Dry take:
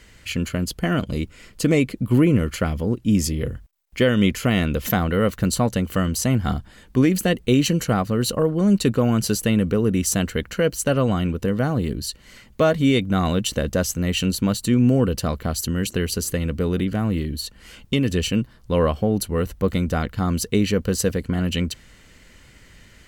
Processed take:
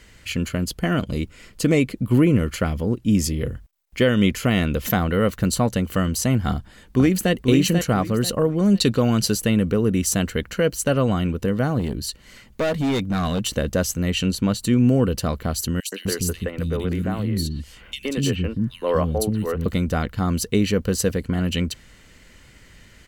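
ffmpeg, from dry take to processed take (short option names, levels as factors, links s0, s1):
-filter_complex "[0:a]asplit=2[s0][s1];[s1]afade=t=in:st=6.5:d=0.01,afade=t=out:st=7.32:d=0.01,aecho=0:1:490|980|1470|1960:0.501187|0.150356|0.0451069|0.0135321[s2];[s0][s2]amix=inputs=2:normalize=0,asettb=1/sr,asplit=3[s3][s4][s5];[s3]atrim=end=8.754[s6];[s4]atrim=start=8.75:end=9.26,asetpts=PTS-STARTPTS,afade=t=in:d=0.004:c=qsin,afade=t=out:st=0.506:d=0.004:c=qsin,equalizer=f=4300:t=o:w=1:g=8.5[s7];[s5]atrim=start=9.256[s8];[s6][s7]acrossfade=d=0.004:c1=hsin:c2=qsin[s9];[s9][s8]acrossfade=d=0.004:c1=qsin:c2=hsin,asettb=1/sr,asplit=3[s10][s11][s12];[s10]atrim=end=11.794[s13];[s11]atrim=start=11.79:end=13.49,asetpts=PTS-STARTPTS,afade=t=in:d=0.004:c=qsin,afade=t=out:st=1.696:d=0.004:c=qsin,asoftclip=type=hard:threshold=0.119[s14];[s12]atrim=start=13.486[s15];[s13][s14]acrossfade=d=0.004:c1=hsin:c2=qsin[s16];[s16][s15]acrossfade=d=0.004:c1=qsin:c2=hsin,asettb=1/sr,asplit=3[s17][s18][s19];[s17]atrim=end=14.104[s20];[s18]atrim=start=14.1:end=14.6,asetpts=PTS-STARTPTS,afade=t=in:d=0.004:c=qsin,afade=t=out:st=0.496:d=0.004:c=qsin,highshelf=f=11000:g=-10.5[s21];[s19]atrim=start=14.596[s22];[s20][s21]acrossfade=d=0.004:c1=hsin:c2=qsin[s23];[s23][s22]acrossfade=d=0.004:c1=qsin:c2=hsin,asettb=1/sr,asplit=3[s24][s25][s26];[s24]atrim=end=15.804[s27];[s25]atrim=start=15.8:end=19.66,asetpts=PTS-STARTPTS,afade=t=in:d=0.004:c=qsin,afade=t=out:st=3.856:d=0.004:c=qsin,acrossover=split=290|2600[s28][s29][s30];[s29]adelay=120[s31];[s28]adelay=250[s32];[s32][s31][s30]amix=inputs=3:normalize=0,atrim=end_sample=170226[s33];[s26]atrim=start=19.656[s34];[s27][s33]acrossfade=d=0.004:c1=hsin:c2=qsin[s35];[s35][s34]acrossfade=d=0.004:c1=qsin:c2=hsin"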